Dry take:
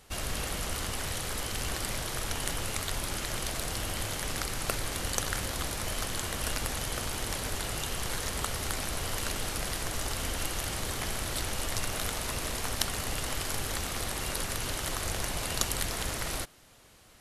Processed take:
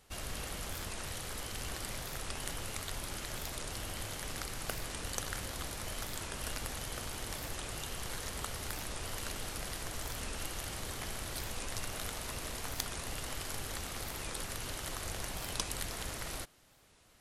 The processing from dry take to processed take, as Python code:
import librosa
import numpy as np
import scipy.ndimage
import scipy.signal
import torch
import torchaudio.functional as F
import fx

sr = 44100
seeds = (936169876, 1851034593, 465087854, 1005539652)

y = fx.record_warp(x, sr, rpm=45.0, depth_cents=250.0)
y = y * 10.0 ** (-7.0 / 20.0)